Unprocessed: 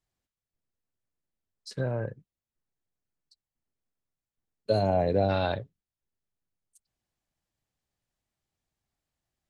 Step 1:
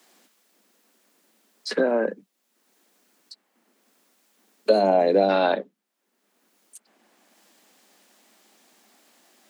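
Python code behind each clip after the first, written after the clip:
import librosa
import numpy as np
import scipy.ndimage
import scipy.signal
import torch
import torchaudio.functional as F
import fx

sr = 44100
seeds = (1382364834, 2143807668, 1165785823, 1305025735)

y = scipy.signal.sosfilt(scipy.signal.butter(12, 200.0, 'highpass', fs=sr, output='sos'), x)
y = fx.band_squash(y, sr, depth_pct=70)
y = y * librosa.db_to_amplitude(8.0)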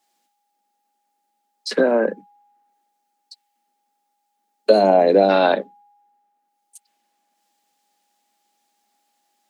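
y = x + 10.0 ** (-53.0 / 20.0) * np.sin(2.0 * np.pi * 820.0 * np.arange(len(x)) / sr)
y = fx.band_widen(y, sr, depth_pct=70)
y = y * librosa.db_to_amplitude(-1.5)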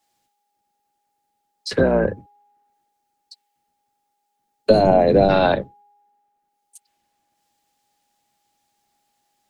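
y = fx.octave_divider(x, sr, octaves=1, level_db=1.0)
y = y * librosa.db_to_amplitude(-1.0)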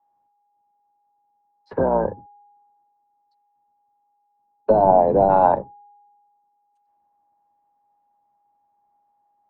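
y = fx.lowpass_res(x, sr, hz=920.0, q=6.6)
y = y * librosa.db_to_amplitude(-6.0)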